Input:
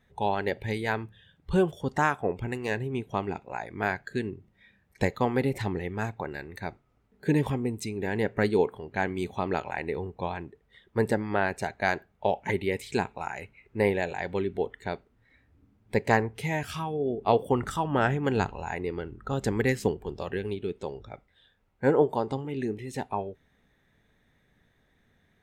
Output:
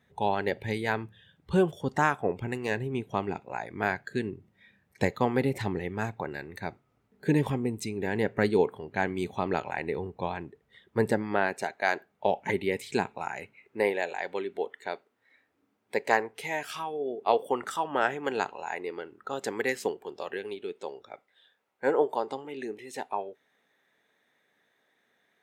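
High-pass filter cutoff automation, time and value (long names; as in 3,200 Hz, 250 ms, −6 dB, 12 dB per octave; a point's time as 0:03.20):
0:11.09 96 Hz
0:11.84 390 Hz
0:12.31 140 Hz
0:13.38 140 Hz
0:13.96 420 Hz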